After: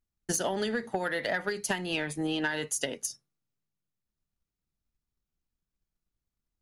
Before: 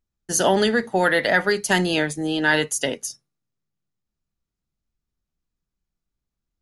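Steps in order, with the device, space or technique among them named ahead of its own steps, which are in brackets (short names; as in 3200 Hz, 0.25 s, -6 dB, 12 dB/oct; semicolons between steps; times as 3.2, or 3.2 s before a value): 1.71–2.48 fifteen-band EQ 1000 Hz +4 dB, 2500 Hz +6 dB, 6300 Hz -6 dB; drum-bus smash (transient shaper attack +8 dB, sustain +2 dB; compressor 16:1, threshold -19 dBFS, peak gain reduction 14 dB; soft clip -12 dBFS, distortion -20 dB); gain -6 dB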